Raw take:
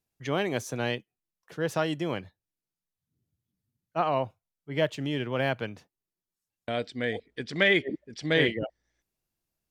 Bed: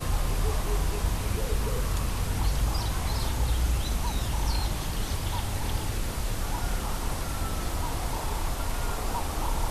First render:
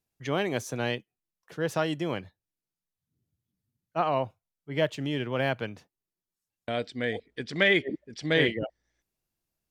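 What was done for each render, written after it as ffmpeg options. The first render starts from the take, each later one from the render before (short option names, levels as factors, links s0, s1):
-af anull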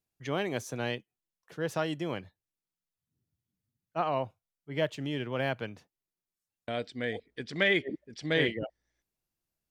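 -af "volume=0.668"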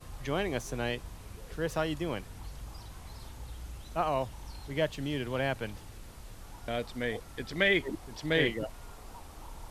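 -filter_complex "[1:a]volume=0.133[s0];[0:a][s0]amix=inputs=2:normalize=0"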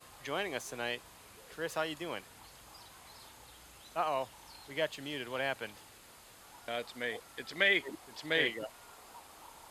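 -af "highpass=f=730:p=1,bandreject=f=5700:w=13"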